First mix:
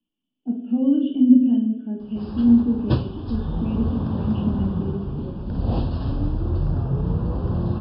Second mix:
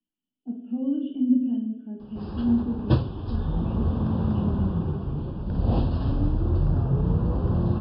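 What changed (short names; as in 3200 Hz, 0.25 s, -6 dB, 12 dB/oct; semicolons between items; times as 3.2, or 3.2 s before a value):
speech -7.5 dB; master: add air absorption 86 m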